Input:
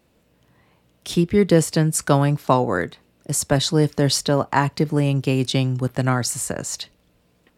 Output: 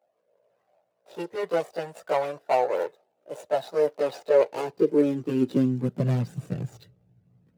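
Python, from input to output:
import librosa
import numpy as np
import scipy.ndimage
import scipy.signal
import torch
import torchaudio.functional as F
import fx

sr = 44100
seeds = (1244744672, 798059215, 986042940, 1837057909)

y = scipy.ndimage.median_filter(x, 41, mode='constant')
y = fx.chorus_voices(y, sr, voices=4, hz=0.31, base_ms=17, depth_ms=1.4, mix_pct=70)
y = fx.filter_sweep_highpass(y, sr, from_hz=620.0, to_hz=120.0, start_s=4.02, end_s=6.8, q=3.1)
y = F.gain(torch.from_numpy(y), -3.0).numpy()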